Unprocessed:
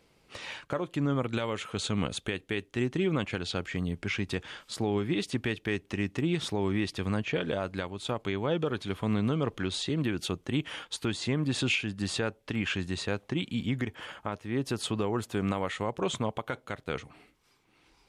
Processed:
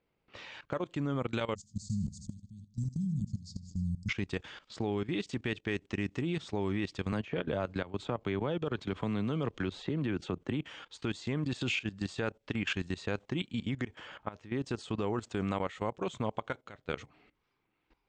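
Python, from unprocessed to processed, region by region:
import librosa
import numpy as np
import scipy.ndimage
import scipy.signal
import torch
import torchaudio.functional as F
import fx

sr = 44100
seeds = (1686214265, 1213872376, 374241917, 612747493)

y = fx.chain(x, sr, fx.cheby1_bandstop(low_hz=220.0, high_hz=4800.0, order=5),
    fx.low_shelf(hz=97.0, db=6.5),
    fx.echo_feedback(ms=79, feedback_pct=42, wet_db=-10.5), at=(1.55, 4.09))
y = fx.chain(y, sr, fx.high_shelf(hz=3400.0, db=-10.5),
    fx.band_squash(depth_pct=100), at=(7.12, 10.65))
y = fx.env_lowpass(y, sr, base_hz=2700.0, full_db=-29.5)
y = scipy.signal.sosfilt(scipy.signal.butter(12, 8300.0, 'lowpass', fs=sr, output='sos'), y)
y = fx.level_steps(y, sr, step_db=16)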